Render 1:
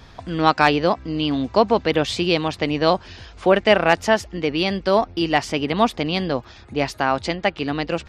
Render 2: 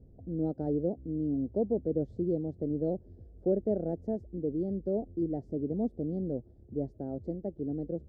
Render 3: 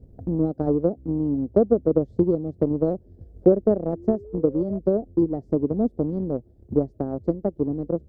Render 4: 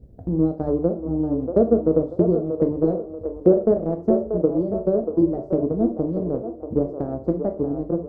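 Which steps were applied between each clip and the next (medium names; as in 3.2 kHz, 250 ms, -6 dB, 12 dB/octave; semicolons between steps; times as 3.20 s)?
inverse Chebyshev low-pass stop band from 1 kHz, stop band 40 dB; trim -8.5 dB
painted sound rise, 3.93–4.79 s, 320–660 Hz -45 dBFS; transient shaper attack +9 dB, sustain -4 dB; trim +6 dB
feedback echo behind a band-pass 635 ms, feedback 38%, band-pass 720 Hz, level -6 dB; reverberation RT60 0.35 s, pre-delay 5 ms, DRR 5.5 dB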